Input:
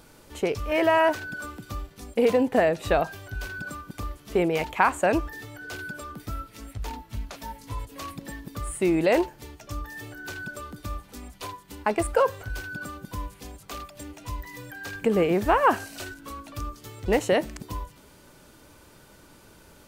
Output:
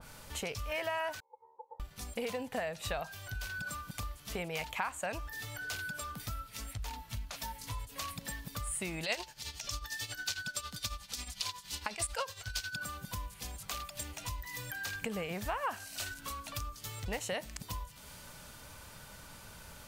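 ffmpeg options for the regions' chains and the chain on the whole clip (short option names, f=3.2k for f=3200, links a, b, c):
-filter_complex "[0:a]asettb=1/sr,asplit=3[a][b][c];[a]atrim=end=1.204[d];[b]atrim=start=1.2:end=1.8,asetpts=PTS-STARTPTS,afade=t=in:d=0.004:c=qsin,afade=t=out:st=0.596:d=0.004:c=qsin,asuperpass=centerf=190:order=4:qfactor=3.3,aeval=exprs='val(0)*sin(2*PI*680*n/s)':c=same[e];[c]atrim=start=1.796[f];[d][e]acrossfade=d=0.004:c1=hsin:c2=qsin[g];[g][f]acrossfade=d=0.004:c1=qsin:c2=hsin,asettb=1/sr,asplit=3[h][i][j];[h]atrim=end=9.034[k];[i]atrim=start=9.03:end=12.76,asetpts=PTS-STARTPTS,afade=t=in:d=0.004:c=qsin,afade=t=out:st=3.726:d=0.004:c=qsin,tremolo=f=11:d=0.74,equalizer=f=4.7k:t=o:w=2:g=12.5[l];[j]atrim=start=12.756[m];[k][l]acrossfade=d=0.004:c1=hsin:c2=qsin[n];[n][m]acrossfade=d=0.004:c1=qsin:c2=hsin,equalizer=f=340:t=o:w=0.89:g=-14.5,acompressor=threshold=-45dB:ratio=2.5,adynamicequalizer=threshold=0.00141:dfrequency=2400:dqfactor=0.7:tfrequency=2400:tqfactor=0.7:attack=5:release=100:ratio=0.375:range=3:mode=boostabove:tftype=highshelf,volume=3dB"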